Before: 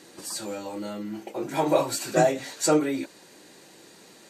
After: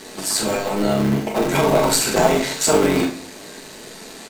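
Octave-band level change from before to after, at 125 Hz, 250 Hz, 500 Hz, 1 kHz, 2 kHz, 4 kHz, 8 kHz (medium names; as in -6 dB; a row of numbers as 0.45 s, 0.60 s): +11.5 dB, +8.0 dB, +7.0 dB, +7.0 dB, +10.5 dB, +12.0 dB, +10.5 dB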